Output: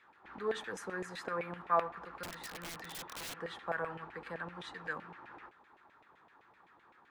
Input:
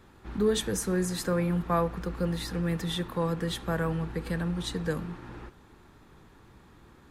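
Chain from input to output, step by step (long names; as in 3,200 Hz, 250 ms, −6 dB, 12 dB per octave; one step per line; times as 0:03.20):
feedback echo with a band-pass in the loop 90 ms, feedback 67%, band-pass 1,200 Hz, level −22.5 dB
auto-filter band-pass saw down 7.8 Hz 660–2,400 Hz
0:02.23–0:03.38: wrap-around overflow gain 41 dB
level +2.5 dB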